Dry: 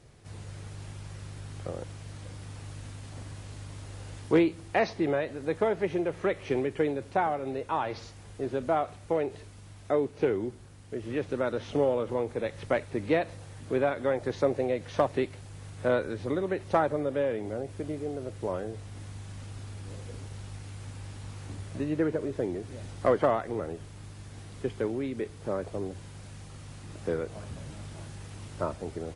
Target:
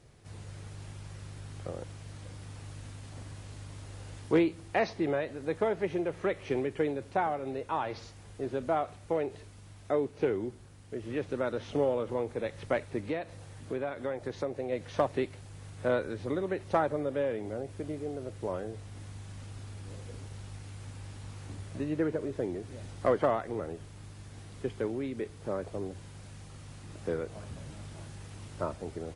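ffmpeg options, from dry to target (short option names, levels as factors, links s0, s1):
-filter_complex "[0:a]asplit=3[s0][s1][s2];[s0]afade=t=out:st=13:d=0.02[s3];[s1]acompressor=threshold=0.0316:ratio=2.5,afade=t=in:st=13:d=0.02,afade=t=out:st=14.71:d=0.02[s4];[s2]afade=t=in:st=14.71:d=0.02[s5];[s3][s4][s5]amix=inputs=3:normalize=0,volume=0.75"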